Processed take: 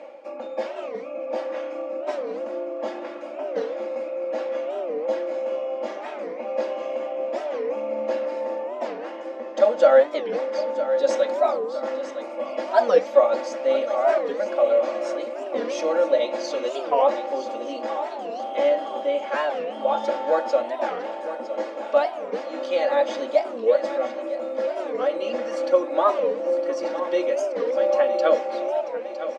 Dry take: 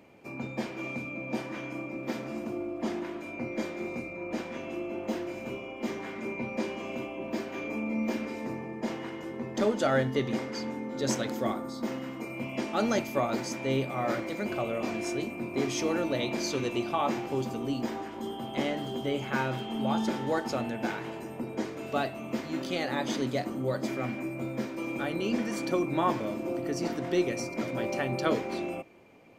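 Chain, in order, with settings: comb 3.6 ms, depth 92%; reverse; upward compressor, threshold -32 dBFS; reverse; resonant high-pass 570 Hz, resonance Q 3.8; air absorption 100 m; feedback echo 0.959 s, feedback 54%, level -11.5 dB; record warp 45 rpm, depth 250 cents

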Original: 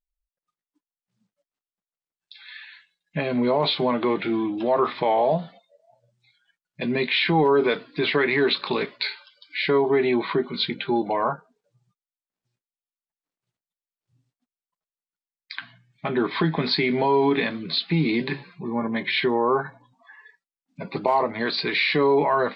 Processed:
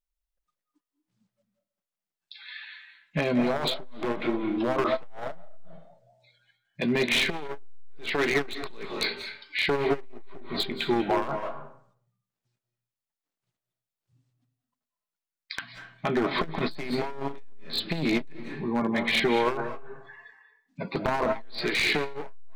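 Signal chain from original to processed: one-sided fold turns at -18.5 dBFS; on a send at -5 dB: high shelf 3200 Hz -8.5 dB + reverb RT60 0.55 s, pre-delay 0.152 s; on the sum: core saturation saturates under 230 Hz

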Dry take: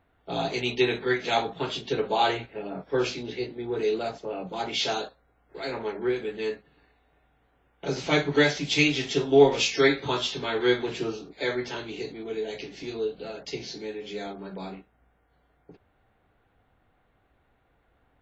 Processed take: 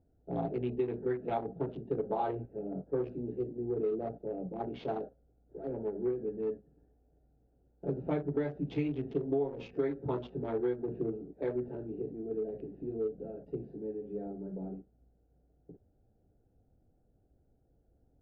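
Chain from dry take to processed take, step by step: Wiener smoothing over 41 samples; Bessel low-pass 670 Hz, order 2; compressor 10:1, threshold -28 dBFS, peak gain reduction 16 dB

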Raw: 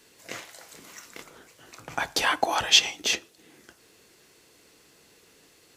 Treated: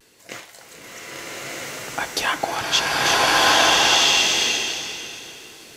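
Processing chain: vocal rider 0.5 s; vibrato 0.43 Hz 23 cents; bloom reverb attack 1.32 s, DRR -9.5 dB

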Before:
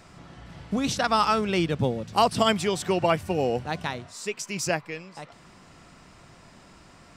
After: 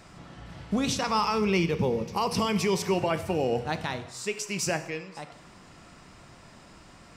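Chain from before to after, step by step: 0.98–2.94 ripple EQ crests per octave 0.82, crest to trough 9 dB; limiter -17 dBFS, peak gain reduction 11 dB; non-linear reverb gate 0.26 s falling, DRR 9.5 dB

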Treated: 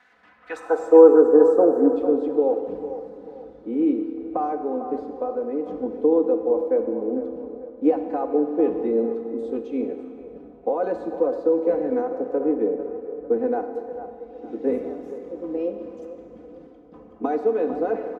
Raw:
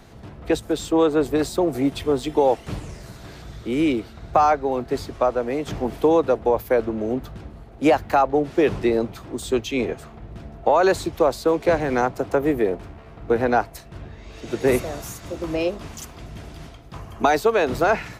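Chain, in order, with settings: 0.56–1.93 EQ curve 240 Hz 0 dB, 420 Hz +9 dB, 980 Hz +13 dB, 1600 Hz +14 dB, 2500 Hz -23 dB, 6500 Hz +10 dB; band-pass sweep 1700 Hz -> 360 Hz, 0.45–1.02; comb 4 ms, depth 99%; on a send: band-limited delay 0.449 s, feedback 40%, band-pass 840 Hz, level -10 dB; on the sum: Schroeder reverb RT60 2.1 s, combs from 27 ms, DRR 6.5 dB; gain -1.5 dB

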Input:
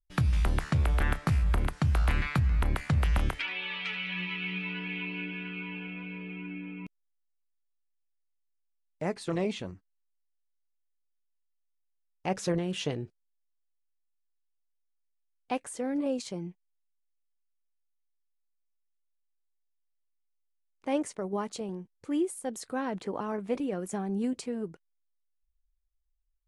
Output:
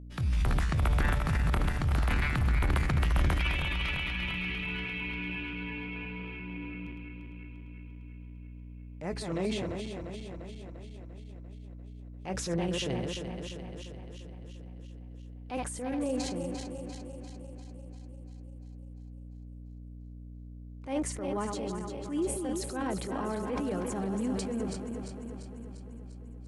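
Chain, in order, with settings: regenerating reverse delay 0.173 s, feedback 78%, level -7 dB; hum 60 Hz, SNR 12 dB; transient shaper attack -8 dB, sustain +6 dB; gain -1.5 dB

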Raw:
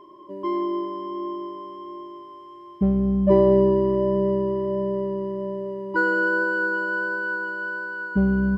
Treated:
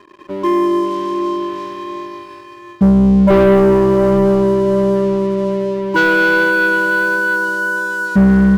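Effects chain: sample leveller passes 3; bell 170 Hz +2.5 dB 1.2 oct

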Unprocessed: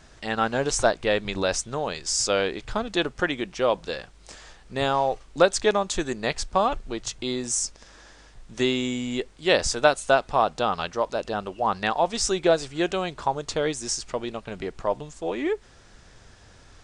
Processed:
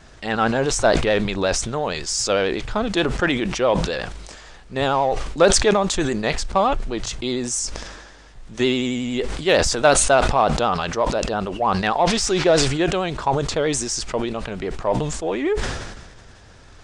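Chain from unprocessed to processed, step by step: high shelf 5000 Hz -4.5 dB; 12.06–12.64 band noise 710–5400 Hz -46 dBFS; in parallel at -6 dB: soft clip -19.5 dBFS, distortion -10 dB; on the sum: vibrato 11 Hz 50 cents; sustainer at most 42 dB/s; gain +1 dB

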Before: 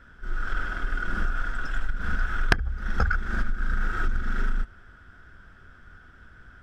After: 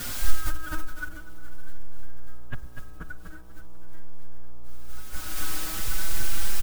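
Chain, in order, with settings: low shelf 270 Hz +8.5 dB; LPC vocoder at 8 kHz pitch kept; in parallel at -7 dB: requantised 6-bit, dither triangular; on the sum: limiter -12.5 dBFS, peak gain reduction 10.5 dB; on a send: feedback echo 0.246 s, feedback 60%, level -7.5 dB; on the sum: spring tank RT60 2.2 s, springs 47 ms, DRR 12 dB; negative-ratio compressor -13 dBFS, ratio -0.5; buzz 60 Hz, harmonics 21, -52 dBFS -5 dB/oct; endless flanger 5.2 ms +0.44 Hz; gain +2.5 dB

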